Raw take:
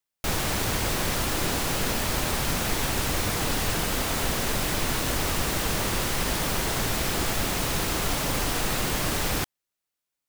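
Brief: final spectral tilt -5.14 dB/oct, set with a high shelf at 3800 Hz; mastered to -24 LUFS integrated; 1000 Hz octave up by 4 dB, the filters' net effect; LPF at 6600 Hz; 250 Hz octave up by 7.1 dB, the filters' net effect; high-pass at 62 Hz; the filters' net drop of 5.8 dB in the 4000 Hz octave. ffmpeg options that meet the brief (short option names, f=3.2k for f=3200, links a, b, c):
-af "highpass=62,lowpass=6.6k,equalizer=f=250:t=o:g=9,equalizer=f=1k:t=o:g=5,highshelf=f=3.8k:g=-3.5,equalizer=f=4k:t=o:g=-5,volume=2dB"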